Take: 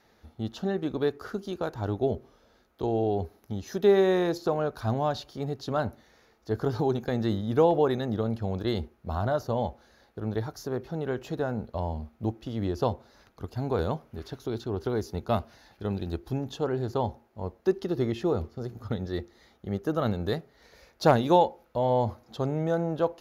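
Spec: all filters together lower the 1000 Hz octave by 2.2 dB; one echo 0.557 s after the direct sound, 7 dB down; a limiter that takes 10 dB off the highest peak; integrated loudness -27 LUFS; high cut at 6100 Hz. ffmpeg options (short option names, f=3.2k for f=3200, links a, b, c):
-af "lowpass=6.1k,equalizer=f=1k:t=o:g=-3,alimiter=limit=-19dB:level=0:latency=1,aecho=1:1:557:0.447,volume=4dB"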